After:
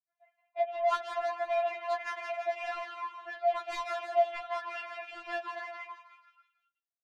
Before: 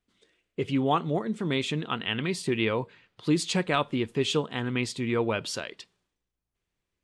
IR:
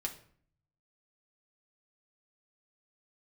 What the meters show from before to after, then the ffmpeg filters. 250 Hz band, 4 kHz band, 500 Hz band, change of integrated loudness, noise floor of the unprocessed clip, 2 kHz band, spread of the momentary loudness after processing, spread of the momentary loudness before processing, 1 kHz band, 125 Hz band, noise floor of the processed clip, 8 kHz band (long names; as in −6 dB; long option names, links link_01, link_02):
below −30 dB, −14.5 dB, −2.5 dB, −5.5 dB, −85 dBFS, −5.0 dB, 12 LU, 9 LU, +1.0 dB, below −40 dB, below −85 dBFS, below −15 dB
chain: -filter_complex "[0:a]highpass=frequency=210:width_type=q:width=0.5412,highpass=frequency=210:width_type=q:width=1.307,lowpass=frequency=2000:width_type=q:width=0.5176,lowpass=frequency=2000:width_type=q:width=0.7071,lowpass=frequency=2000:width_type=q:width=1.932,afreqshift=280,asplit=2[link_01][link_02];[link_02]acompressor=threshold=-40dB:ratio=6,volume=-2dB[link_03];[link_01][link_03]amix=inputs=2:normalize=0,asoftclip=type=tanh:threshold=-25dB,agate=range=-33dB:threshold=-58dB:ratio=3:detection=peak,asplit=7[link_04][link_05][link_06][link_07][link_08][link_09][link_10];[link_05]adelay=162,afreqshift=110,volume=-5dB[link_11];[link_06]adelay=324,afreqshift=220,volume=-11.6dB[link_12];[link_07]adelay=486,afreqshift=330,volume=-18.1dB[link_13];[link_08]adelay=648,afreqshift=440,volume=-24.7dB[link_14];[link_09]adelay=810,afreqshift=550,volume=-31.2dB[link_15];[link_10]adelay=972,afreqshift=660,volume=-37.8dB[link_16];[link_04][link_11][link_12][link_13][link_14][link_15][link_16]amix=inputs=7:normalize=0,afftfilt=real='re*4*eq(mod(b,16),0)':imag='im*4*eq(mod(b,16),0)':win_size=2048:overlap=0.75"